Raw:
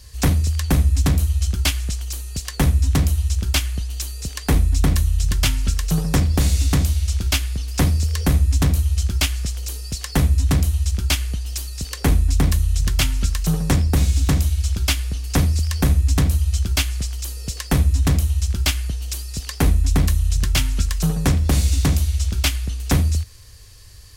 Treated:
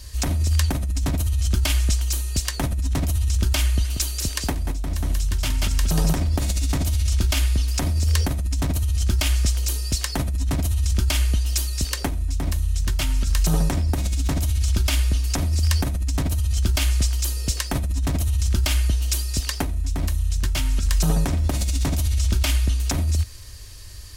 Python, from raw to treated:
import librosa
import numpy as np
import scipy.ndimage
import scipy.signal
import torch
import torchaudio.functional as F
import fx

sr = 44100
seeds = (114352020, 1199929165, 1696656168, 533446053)

y = fx.echo_single(x, sr, ms=186, db=-5.5, at=(3.83, 6.17), fade=0.02)
y = fx.dynamic_eq(y, sr, hz=740.0, q=1.6, threshold_db=-40.0, ratio=4.0, max_db=5)
y = y + 0.35 * np.pad(y, (int(3.2 * sr / 1000.0), 0))[:len(y)]
y = fx.over_compress(y, sr, threshold_db=-20.0, ratio=-1.0)